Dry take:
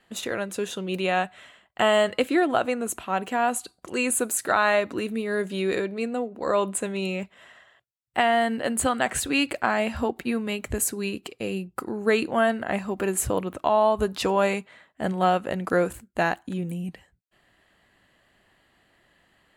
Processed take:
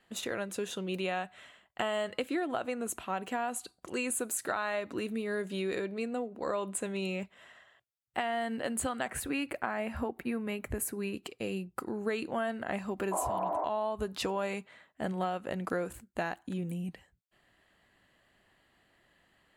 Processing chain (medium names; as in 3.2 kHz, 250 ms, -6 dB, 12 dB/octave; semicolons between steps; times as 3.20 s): 9.08–11.14 s: high-order bell 4.9 kHz -8 dB; 13.15–13.63 s: spectral replace 240–2300 Hz after; compression 4:1, threshold -25 dBFS, peak gain reduction 8.5 dB; trim -5 dB